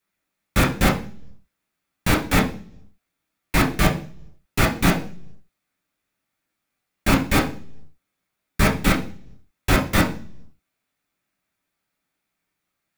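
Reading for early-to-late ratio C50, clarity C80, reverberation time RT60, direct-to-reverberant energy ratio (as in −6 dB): 10.5 dB, 16.0 dB, 0.45 s, −3.5 dB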